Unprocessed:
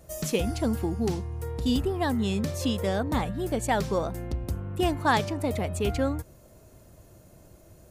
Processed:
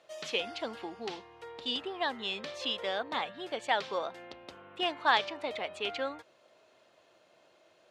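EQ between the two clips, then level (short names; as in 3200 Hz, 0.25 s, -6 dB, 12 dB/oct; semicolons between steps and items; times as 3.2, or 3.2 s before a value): HPF 600 Hz 12 dB/oct; synth low-pass 3400 Hz, resonance Q 2.1; -2.5 dB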